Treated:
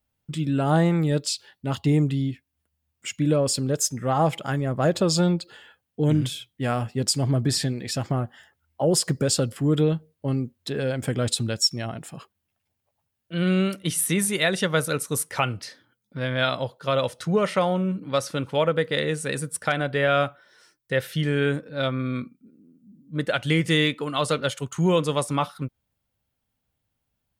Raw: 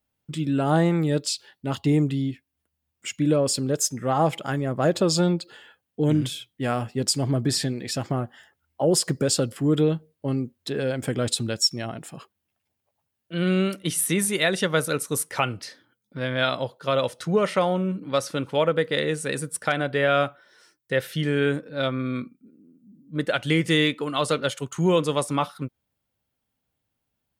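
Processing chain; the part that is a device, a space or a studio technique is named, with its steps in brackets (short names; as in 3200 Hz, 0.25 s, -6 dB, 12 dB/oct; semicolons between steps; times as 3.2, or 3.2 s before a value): low shelf boost with a cut just above (low shelf 96 Hz +7.5 dB; bell 330 Hz -2.5 dB 0.87 oct)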